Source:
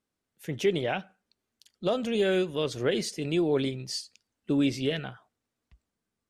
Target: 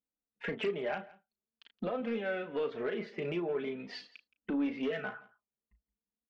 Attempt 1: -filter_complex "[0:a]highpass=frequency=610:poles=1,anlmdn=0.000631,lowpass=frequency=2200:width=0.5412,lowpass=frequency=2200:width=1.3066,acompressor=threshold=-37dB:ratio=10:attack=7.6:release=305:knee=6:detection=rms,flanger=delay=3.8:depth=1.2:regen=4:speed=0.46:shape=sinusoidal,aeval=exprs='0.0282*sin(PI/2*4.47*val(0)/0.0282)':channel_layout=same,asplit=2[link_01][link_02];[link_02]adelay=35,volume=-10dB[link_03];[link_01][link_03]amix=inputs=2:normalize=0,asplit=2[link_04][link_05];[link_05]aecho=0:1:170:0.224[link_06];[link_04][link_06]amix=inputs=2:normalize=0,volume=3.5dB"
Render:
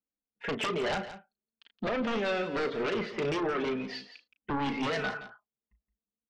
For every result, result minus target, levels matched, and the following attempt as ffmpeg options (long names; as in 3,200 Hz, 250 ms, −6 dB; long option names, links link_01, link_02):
downward compressor: peak gain reduction −9.5 dB; echo-to-direct +8 dB
-filter_complex "[0:a]highpass=frequency=610:poles=1,anlmdn=0.000631,lowpass=frequency=2200:width=0.5412,lowpass=frequency=2200:width=1.3066,acompressor=threshold=-47.5dB:ratio=10:attack=7.6:release=305:knee=6:detection=rms,flanger=delay=3.8:depth=1.2:regen=4:speed=0.46:shape=sinusoidal,aeval=exprs='0.0282*sin(PI/2*4.47*val(0)/0.0282)':channel_layout=same,asplit=2[link_01][link_02];[link_02]adelay=35,volume=-10dB[link_03];[link_01][link_03]amix=inputs=2:normalize=0,asplit=2[link_04][link_05];[link_05]aecho=0:1:170:0.224[link_06];[link_04][link_06]amix=inputs=2:normalize=0,volume=3.5dB"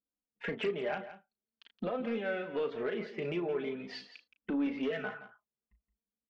echo-to-direct +8 dB
-filter_complex "[0:a]highpass=frequency=610:poles=1,anlmdn=0.000631,lowpass=frequency=2200:width=0.5412,lowpass=frequency=2200:width=1.3066,acompressor=threshold=-47.5dB:ratio=10:attack=7.6:release=305:knee=6:detection=rms,flanger=delay=3.8:depth=1.2:regen=4:speed=0.46:shape=sinusoidal,aeval=exprs='0.0282*sin(PI/2*4.47*val(0)/0.0282)':channel_layout=same,asplit=2[link_01][link_02];[link_02]adelay=35,volume=-10dB[link_03];[link_01][link_03]amix=inputs=2:normalize=0,asplit=2[link_04][link_05];[link_05]aecho=0:1:170:0.0891[link_06];[link_04][link_06]amix=inputs=2:normalize=0,volume=3.5dB"